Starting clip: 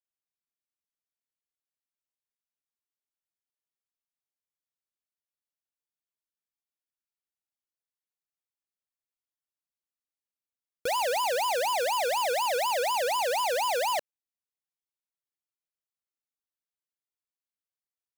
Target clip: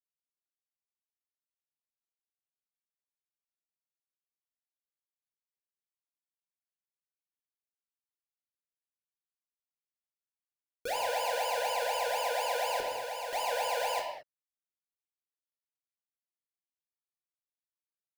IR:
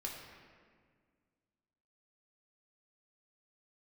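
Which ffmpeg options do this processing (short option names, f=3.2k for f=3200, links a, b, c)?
-filter_complex "[0:a]acrusher=bits=6:mix=0:aa=0.5,asettb=1/sr,asplit=3[a][b][c];[a]atrim=end=12.804[d];[b]atrim=start=12.8:end=13.33,asetpts=PTS-STARTPTS,afade=t=in:d=0.004:c=qsin,afade=t=out:st=0.526:d=0.004:c=qsin,aeval=exprs='(mod(28.2*val(0)+1,2)-1)/28.2':c=same[e];[c]atrim=start=13.326[f];[d][e]acrossfade=d=0.004:c1=hsin:c2=qsin[g];[g][f]acrossfade=d=0.004:c1=qsin:c2=hsin[h];[1:a]atrim=start_sample=2205,afade=t=out:st=0.28:d=0.01,atrim=end_sample=12789[i];[h][i]afir=irnorm=-1:irlink=0,volume=-3.5dB"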